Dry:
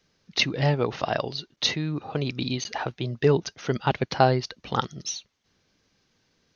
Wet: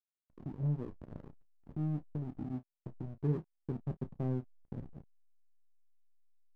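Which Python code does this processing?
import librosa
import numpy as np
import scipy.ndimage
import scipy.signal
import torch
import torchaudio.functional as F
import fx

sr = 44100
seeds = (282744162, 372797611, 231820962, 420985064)

y = fx.dynamic_eq(x, sr, hz=260.0, q=0.72, threshold_db=-36.0, ratio=4.0, max_db=-6)
y = fx.ladder_lowpass(y, sr, hz=360.0, resonance_pct=30)
y = fx.comb_fb(y, sr, f0_hz=51.0, decay_s=0.2, harmonics='all', damping=0.0, mix_pct=80)
y = fx.backlash(y, sr, play_db=-41.5)
y = fx.room_early_taps(y, sr, ms=(13, 31), db=(-14.5, -13.5))
y = F.gain(torch.from_numpy(y), 4.5).numpy()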